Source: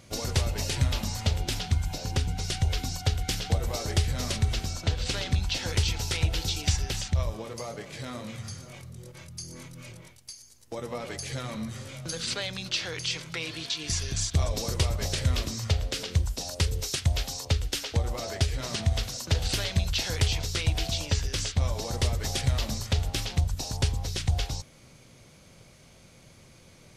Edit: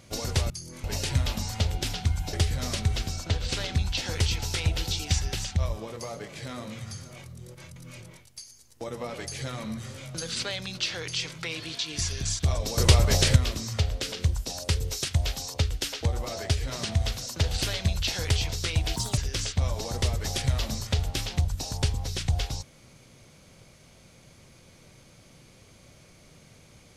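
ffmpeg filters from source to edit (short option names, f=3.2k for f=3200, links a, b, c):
-filter_complex "[0:a]asplit=9[a][b][c][d][e][f][g][h][i];[a]atrim=end=0.502[j];[b]atrim=start=9.328:end=9.672[k];[c]atrim=start=0.498:end=1.992[l];[d]atrim=start=3.898:end=9.332[m];[e]atrim=start=9.668:end=14.692[n];[f]atrim=start=14.688:end=15.272,asetpts=PTS-STARTPTS,volume=8dB[o];[g]atrim=start=15.268:end=20.874[p];[h]atrim=start=20.87:end=21.17,asetpts=PTS-STARTPTS,asetrate=61299,aresample=44100[q];[i]atrim=start=21.166[r];[j][k]acrossfade=d=0.004:c1=hsin:c2=hsin[s];[s][l]acrossfade=d=0.004:c1=hsin:c2=hsin[t];[t][m]acrossfade=d=0.004:c1=hsin:c2=hsin[u];[u][n]acrossfade=d=0.004:c1=hsin:c2=hsin[v];[v][o]acrossfade=d=0.004:c1=hsin:c2=hsin[w];[w][p]acrossfade=d=0.004:c1=hsin:c2=hsin[x];[x][q]acrossfade=d=0.004:c1=hsin:c2=hsin[y];[y][r]acrossfade=d=0.004:c1=hsin:c2=hsin"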